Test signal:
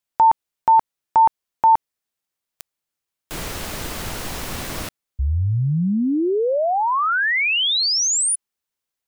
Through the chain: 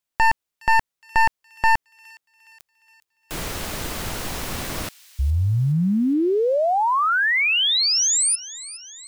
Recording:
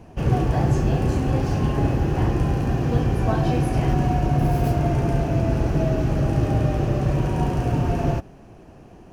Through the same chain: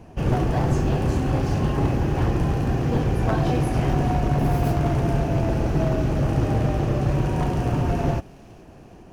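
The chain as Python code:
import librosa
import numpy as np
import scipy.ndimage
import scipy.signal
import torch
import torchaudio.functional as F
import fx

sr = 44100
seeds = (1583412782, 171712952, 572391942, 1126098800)

y = np.minimum(x, 2.0 * 10.0 ** (-16.5 / 20.0) - x)
y = fx.echo_wet_highpass(y, sr, ms=415, feedback_pct=57, hz=2900.0, wet_db=-17.0)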